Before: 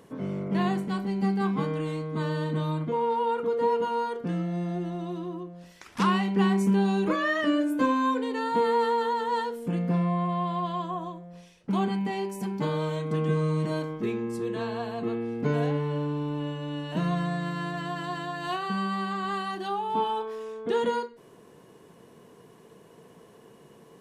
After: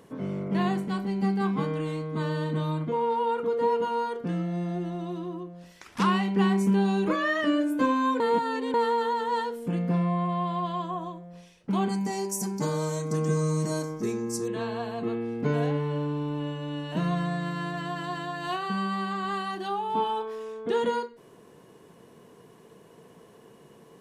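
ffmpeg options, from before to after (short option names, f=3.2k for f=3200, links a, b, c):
-filter_complex "[0:a]asettb=1/sr,asplit=3[a][b][c];[a]atrim=end=11.894[d];[b]atrim=start=11.89:end=14.48,asetpts=PTS-STARTPTS,afade=t=in:d=0.004:c=qsin,afade=t=out:st=2.586:d=0.004:c=qsin,highshelf=f=4.4k:t=q:w=3:g=11[e];[c]atrim=start=14.476[f];[d][e]acrossfade=d=0.004:c1=hsin:c2=qsin[g];[g][f]acrossfade=d=0.004:c1=qsin:c2=hsin,asplit=3[h][i][j];[h]atrim=end=8.202[k];[i]atrim=start=8.198:end=8.742,asetpts=PTS-STARTPTS,areverse[l];[j]atrim=start=8.738[m];[k][l]acrossfade=d=0.004:c1=hsin:c2=hsin[n];[n][m]acrossfade=d=0.004:c1=hsin:c2=hsin"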